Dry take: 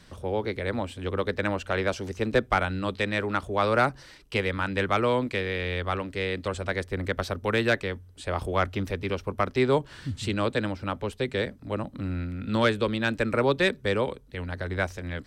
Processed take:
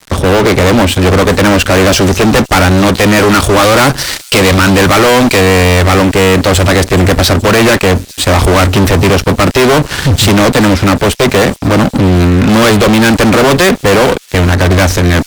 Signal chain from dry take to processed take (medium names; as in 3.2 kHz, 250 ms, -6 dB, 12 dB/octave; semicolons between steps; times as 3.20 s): 3.16–5.41 s: treble shelf 3.3 kHz +9 dB; fuzz box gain 40 dB, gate -47 dBFS; feedback echo behind a high-pass 424 ms, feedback 65%, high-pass 5.5 kHz, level -14.5 dB; trim +8 dB